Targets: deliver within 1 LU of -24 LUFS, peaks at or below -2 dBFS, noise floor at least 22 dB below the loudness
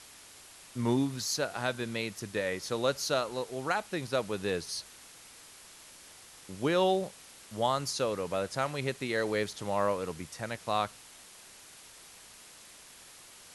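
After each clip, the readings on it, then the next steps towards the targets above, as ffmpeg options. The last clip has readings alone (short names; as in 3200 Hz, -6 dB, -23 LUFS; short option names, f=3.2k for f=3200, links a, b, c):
noise floor -53 dBFS; noise floor target -54 dBFS; loudness -32.0 LUFS; peak -15.0 dBFS; loudness target -24.0 LUFS
-> -af "afftdn=nr=6:nf=-53"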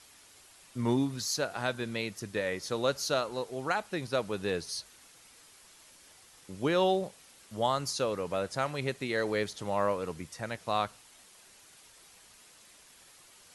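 noise floor -58 dBFS; loudness -32.0 LUFS; peak -15.0 dBFS; loudness target -24.0 LUFS
-> -af "volume=8dB"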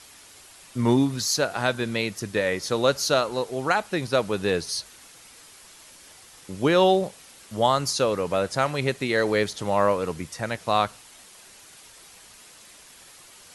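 loudness -24.0 LUFS; peak -7.0 dBFS; noise floor -50 dBFS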